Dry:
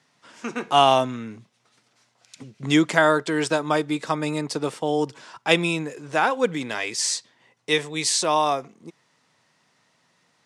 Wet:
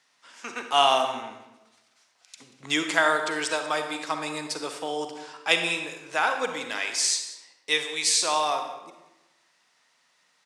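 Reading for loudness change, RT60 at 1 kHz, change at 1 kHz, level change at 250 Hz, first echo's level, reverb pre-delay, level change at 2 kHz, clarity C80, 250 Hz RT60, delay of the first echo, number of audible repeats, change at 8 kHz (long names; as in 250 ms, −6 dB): −3.0 dB, 1.0 s, −3.0 dB, −11.0 dB, −18.0 dB, 37 ms, −0.5 dB, 8.5 dB, 1.1 s, 186 ms, 1, +0.5 dB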